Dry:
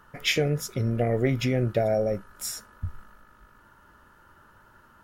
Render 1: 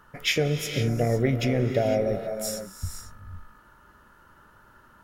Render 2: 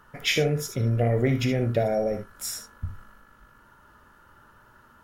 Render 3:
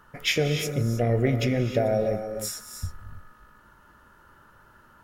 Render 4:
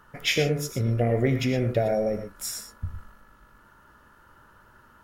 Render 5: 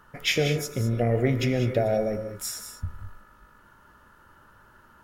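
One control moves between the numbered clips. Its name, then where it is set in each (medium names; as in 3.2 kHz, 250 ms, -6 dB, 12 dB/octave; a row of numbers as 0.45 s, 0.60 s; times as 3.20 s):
gated-style reverb, gate: 530 ms, 90 ms, 340 ms, 140 ms, 230 ms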